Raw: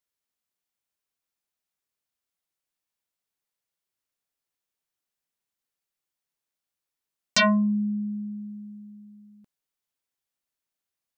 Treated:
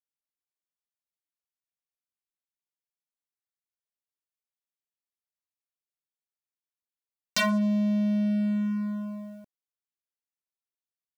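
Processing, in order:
downward compressor 6 to 1, threshold −34 dBFS, peak gain reduction 15 dB
leveller curve on the samples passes 5
level −4.5 dB

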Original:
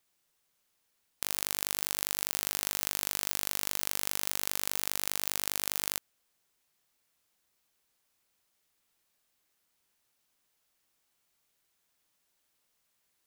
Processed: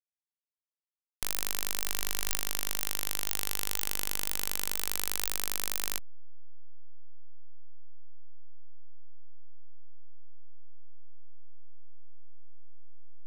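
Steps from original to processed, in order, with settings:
slack as between gear wheels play −25.5 dBFS

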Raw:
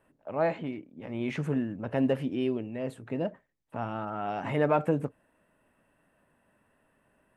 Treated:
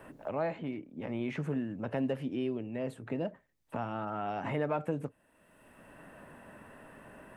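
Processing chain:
multiband upward and downward compressor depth 70%
level −4 dB

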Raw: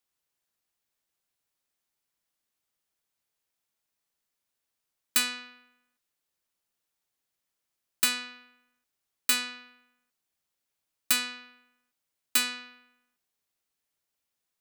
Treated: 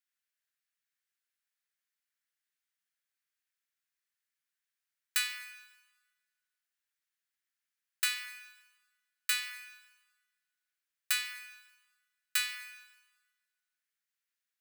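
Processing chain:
four-pole ladder high-pass 1,400 Hz, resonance 50%
dense smooth reverb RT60 1.4 s, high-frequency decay 0.9×, pre-delay 0 ms, DRR 10.5 dB
level +2 dB

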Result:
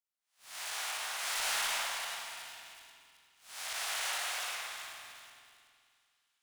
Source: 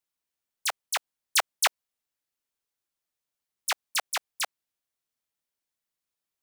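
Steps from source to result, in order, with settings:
spectrum smeared in time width 331 ms
Butterworth high-pass 160 Hz 96 dB per octave
low-shelf EQ 360 Hz −5.5 dB
on a send: echo with a time of its own for lows and highs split 2,400 Hz, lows 278 ms, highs 374 ms, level −7.5 dB
on the sum: chorus effect 2.7 Hz, delay 18 ms, depth 2.7 ms
leveller curve on the samples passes 2
spring reverb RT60 2 s, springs 48 ms, chirp 60 ms, DRR −0.5 dB

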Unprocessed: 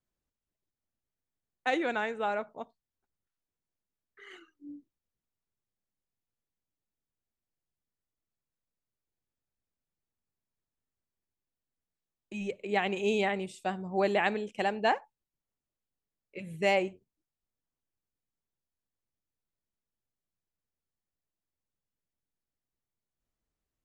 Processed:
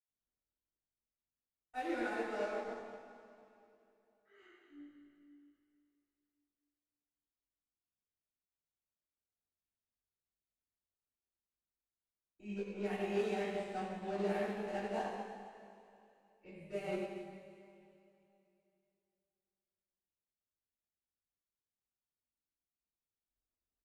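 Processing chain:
high-shelf EQ 3,100 Hz −11.5 dB
brickwall limiter −27 dBFS, peak gain reduction 11.5 dB
harmonic generator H 6 −21 dB, 8 −32 dB, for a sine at −27 dBFS
double-tracking delay 20 ms −4 dB
echo with a time of its own for lows and highs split 660 Hz, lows 263 ms, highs 96 ms, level −15.5 dB
convolution reverb RT60 2.7 s, pre-delay 77 ms
expander for the loud parts 1.5 to 1, over −53 dBFS
level +7 dB

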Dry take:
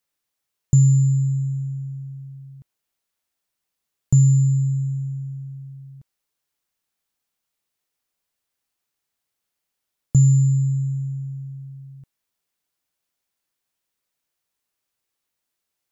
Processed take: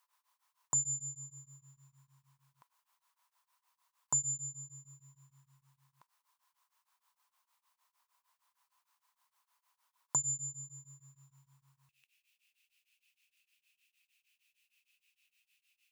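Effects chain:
high-pass with resonance 1,000 Hz, resonance Q 9.1, from 0:11.89 2,600 Hz
tremolo along a rectified sine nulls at 6.5 Hz
level +3 dB

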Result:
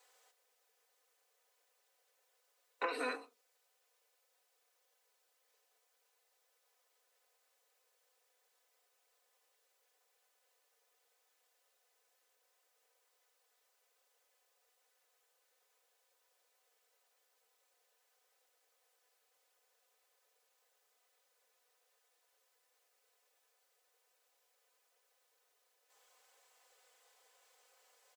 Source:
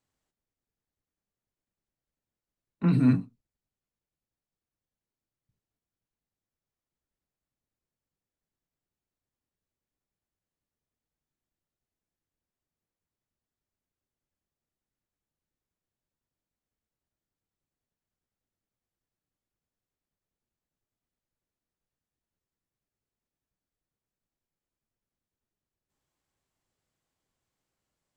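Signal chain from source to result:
Butterworth high-pass 420 Hz 48 dB per octave
comb filter 4 ms, depth 96%
downward compressor 10 to 1, threshold −48 dBFS, peak gain reduction 16 dB
level +13.5 dB

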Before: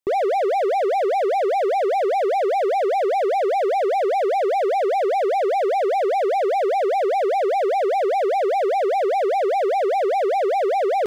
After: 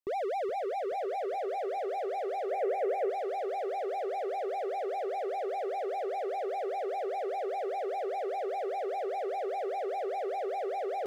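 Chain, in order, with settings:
delay with a low-pass on its return 424 ms, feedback 59%, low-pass 2,300 Hz, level −10 dB
brickwall limiter −18.5 dBFS, peak gain reduction 6.5 dB
0:02.51–0:03.10: graphic EQ with 10 bands 125 Hz +11 dB, 250 Hz −4 dB, 500 Hz +7 dB, 1,000 Hz −4 dB, 2,000 Hz +6 dB, 4,000 Hz −8 dB
level −9 dB

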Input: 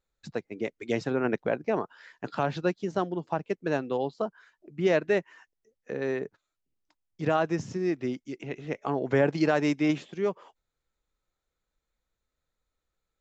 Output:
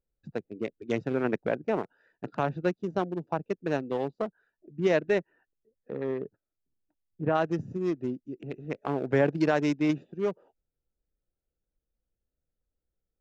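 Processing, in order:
adaptive Wiener filter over 41 samples
0:05.18–0:07.34: low-pass filter 3,000 Hz → 1,900 Hz 12 dB per octave

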